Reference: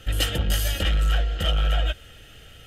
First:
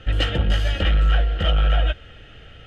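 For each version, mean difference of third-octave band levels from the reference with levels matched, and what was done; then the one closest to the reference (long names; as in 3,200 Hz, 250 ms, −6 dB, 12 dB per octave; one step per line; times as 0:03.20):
5.5 dB: low-pass filter 2,800 Hz 12 dB per octave
level +4 dB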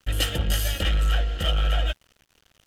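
4.0 dB: dead-zone distortion −41.5 dBFS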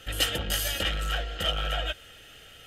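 2.5 dB: low-shelf EQ 230 Hz −11.5 dB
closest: third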